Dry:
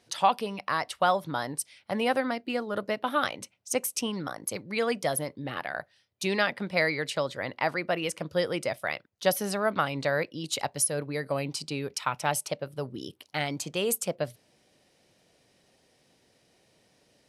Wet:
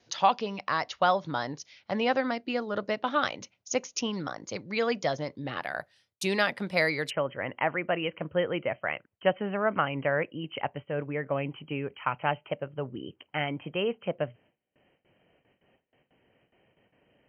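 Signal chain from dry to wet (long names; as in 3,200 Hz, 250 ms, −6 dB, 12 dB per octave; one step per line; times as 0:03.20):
linear-phase brick-wall low-pass 7,000 Hz, from 0:05.61 13,000 Hz, from 0:07.09 3,200 Hz
noise gate with hold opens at −57 dBFS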